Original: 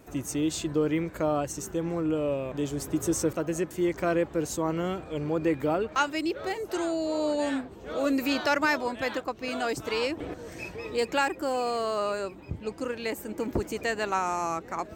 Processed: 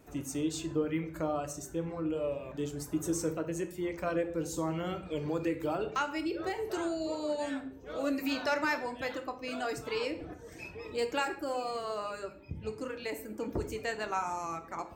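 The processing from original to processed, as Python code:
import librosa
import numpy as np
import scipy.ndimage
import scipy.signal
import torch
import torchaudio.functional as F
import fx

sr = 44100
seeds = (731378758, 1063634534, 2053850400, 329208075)

y = fx.dereverb_blind(x, sr, rt60_s=0.92)
y = fx.room_shoebox(y, sr, seeds[0], volume_m3=89.0, walls='mixed', distance_m=0.37)
y = fx.band_squash(y, sr, depth_pct=70, at=(4.56, 7.15))
y = y * librosa.db_to_amplitude(-6.0)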